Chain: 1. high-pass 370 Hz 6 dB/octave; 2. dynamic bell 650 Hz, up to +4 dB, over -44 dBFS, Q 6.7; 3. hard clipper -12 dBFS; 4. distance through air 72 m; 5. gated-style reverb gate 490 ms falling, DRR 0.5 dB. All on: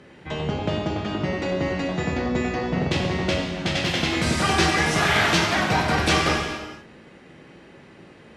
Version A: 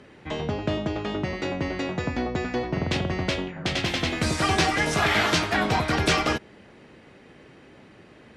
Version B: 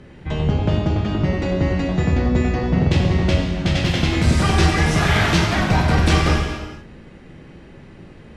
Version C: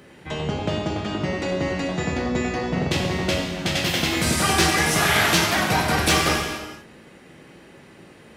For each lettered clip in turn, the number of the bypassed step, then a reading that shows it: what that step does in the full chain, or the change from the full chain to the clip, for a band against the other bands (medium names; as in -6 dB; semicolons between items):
5, crest factor change -2.5 dB; 1, 125 Hz band +10.0 dB; 4, 8 kHz band +6.0 dB